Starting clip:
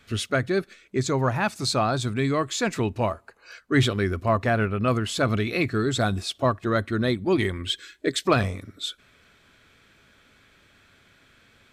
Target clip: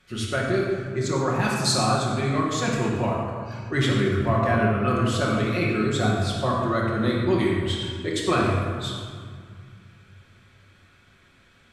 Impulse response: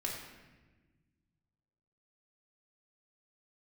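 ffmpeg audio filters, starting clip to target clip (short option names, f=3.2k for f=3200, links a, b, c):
-filter_complex "[0:a]asettb=1/sr,asplit=3[a][b][c];[a]atrim=end=1.394[d];[b]atrim=start=1.39:end=1.91,asetpts=PTS-STARTPTS,afade=t=in:d=0.004:c=qsin,afade=t=out:st=0.516:d=0.004:c=qsin,bass=f=250:g=2,treble=f=4k:g=9[e];[c]atrim=start=1.906[f];[d][e]acrossfade=d=0.004:c1=hsin:c2=qsin[g];[g][f]acrossfade=d=0.004:c1=qsin:c2=hsin[h];[1:a]atrim=start_sample=2205,asetrate=25137,aresample=44100[i];[h][i]afir=irnorm=-1:irlink=0,volume=-5.5dB"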